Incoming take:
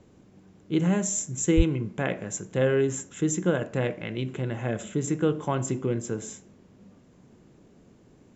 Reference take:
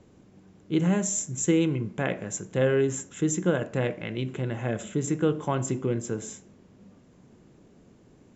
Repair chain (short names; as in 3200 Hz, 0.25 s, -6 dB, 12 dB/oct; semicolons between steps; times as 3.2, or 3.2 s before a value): de-plosive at 1.56